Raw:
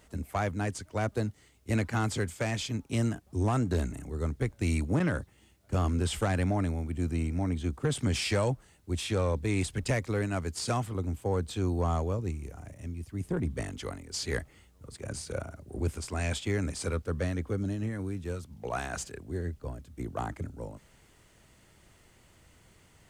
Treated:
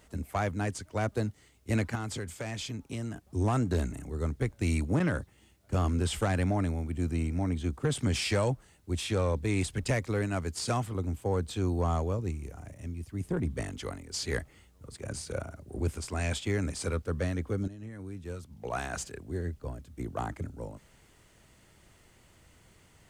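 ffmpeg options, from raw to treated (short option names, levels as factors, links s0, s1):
-filter_complex "[0:a]asettb=1/sr,asplit=3[s0][s1][s2];[s0]atrim=end=1.954[s3];[s1]atrim=start=1.95:end=3.23,asetpts=PTS-STARTPTS,afade=t=in:d=0.004:c=qsin,afade=t=out:st=1.276:d=0.004:c=qsin,acompressor=threshold=0.02:ratio=3:attack=3.2:release=140:knee=1:detection=peak[s4];[s2]atrim=start=3.226[s5];[s3][s4]acrossfade=d=0.004:c1=hsin:c2=qsin[s6];[s6][s5]acrossfade=d=0.004:c1=qsin:c2=hsin,asplit=2[s7][s8];[s7]atrim=end=17.68,asetpts=PTS-STARTPTS,afade=t=out:st=17.676:d=0.004:c=hsin:silence=0.199526[s9];[s8]atrim=start=17.68,asetpts=PTS-STARTPTS,afade=t=in:d=1.14:silence=0.199526[s10];[s9][s10]concat=n=2:v=0:a=1"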